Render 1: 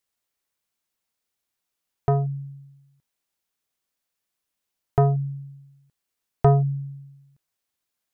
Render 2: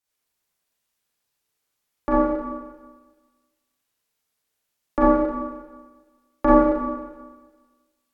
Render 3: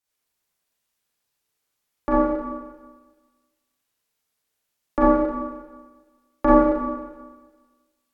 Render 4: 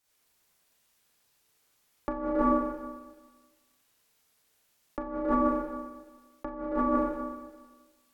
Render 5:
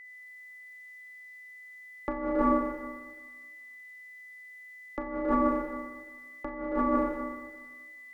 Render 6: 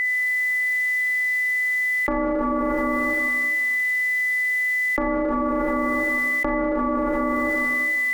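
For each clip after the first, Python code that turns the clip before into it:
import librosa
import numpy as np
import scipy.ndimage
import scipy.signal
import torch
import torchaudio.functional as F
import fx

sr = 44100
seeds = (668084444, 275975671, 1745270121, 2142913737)

y1 = fx.rev_schroeder(x, sr, rt60_s=1.4, comb_ms=30, drr_db=-8.5)
y1 = y1 * np.sin(2.0 * np.pi * 450.0 * np.arange(len(y1)) / sr)
y1 = F.gain(torch.from_numpy(y1), -2.0).numpy()
y2 = y1
y3 = fx.over_compress(y2, sr, threshold_db=-30.0, ratio=-1.0)
y4 = y3 + 10.0 ** (-46.0 / 20.0) * np.sin(2.0 * np.pi * 2000.0 * np.arange(len(y3)) / sr)
y5 = fx.env_flatten(y4, sr, amount_pct=100)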